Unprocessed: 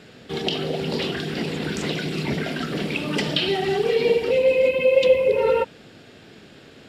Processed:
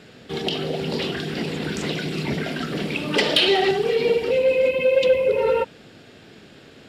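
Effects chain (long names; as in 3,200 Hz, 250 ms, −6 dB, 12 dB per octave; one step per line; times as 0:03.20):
0:03.14–0:03.71: graphic EQ with 10 bands 125 Hz −10 dB, 500 Hz +8 dB, 1,000 Hz +4 dB, 2,000 Hz +5 dB, 4,000 Hz +7 dB
soft clipping −7.5 dBFS, distortion −22 dB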